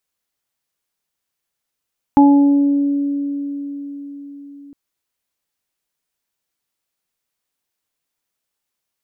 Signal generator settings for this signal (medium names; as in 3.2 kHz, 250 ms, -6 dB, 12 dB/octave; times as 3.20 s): additive tone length 2.56 s, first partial 283 Hz, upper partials -17.5/-4 dB, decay 4.97 s, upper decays 2.78/0.78 s, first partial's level -6 dB